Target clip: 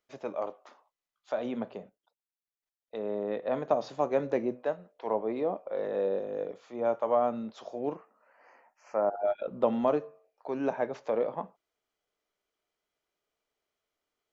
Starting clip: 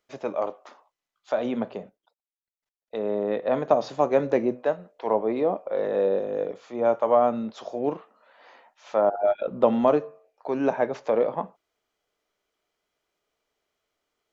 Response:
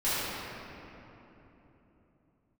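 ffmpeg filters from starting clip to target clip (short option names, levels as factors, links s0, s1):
-filter_complex "[0:a]asettb=1/sr,asplit=3[s0][s1][s2];[s0]atrim=end=7.954[s3];[s1]atrim=start=7.95:end=9.12,asetpts=PTS-STARTPTS,afade=t=in:d=0.004:c=qsin,afade=t=out:st=1.166:d=0.004:c=qsin,asuperstop=centerf=3600:order=4:qfactor=1.4[s4];[s2]atrim=start=9.116[s5];[s3][s4]acrossfade=d=0.004:c1=hsin:c2=qsin[s6];[s6][s5]acrossfade=d=0.004:c1=qsin:c2=hsin,volume=0.473"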